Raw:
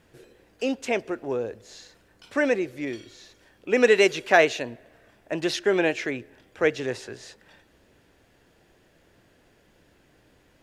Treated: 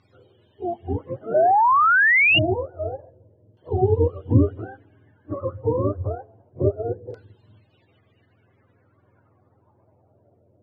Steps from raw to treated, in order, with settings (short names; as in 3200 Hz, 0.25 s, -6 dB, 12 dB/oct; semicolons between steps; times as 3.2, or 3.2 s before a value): spectrum mirrored in octaves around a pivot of 430 Hz; LFO low-pass saw down 0.28 Hz 490–4800 Hz; painted sound rise, 1.34–2.39, 590–2900 Hz -16 dBFS; pre-echo 33 ms -20.5 dB